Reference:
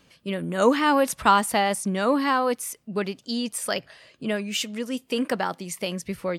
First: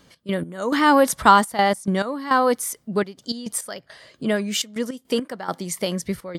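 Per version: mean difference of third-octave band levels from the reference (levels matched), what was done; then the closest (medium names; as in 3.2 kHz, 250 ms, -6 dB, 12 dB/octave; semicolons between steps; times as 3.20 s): 4.0 dB: peaking EQ 2.6 kHz -11 dB 0.24 oct; trance gate "x.x..xxxxx." 104 bpm -12 dB; trim +5 dB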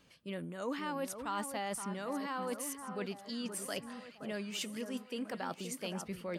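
7.5 dB: reverse; compression 4:1, threshold -30 dBFS, peak gain reduction 15 dB; reverse; echo whose repeats swap between lows and highs 522 ms, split 1.6 kHz, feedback 66%, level -8 dB; trim -7 dB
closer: first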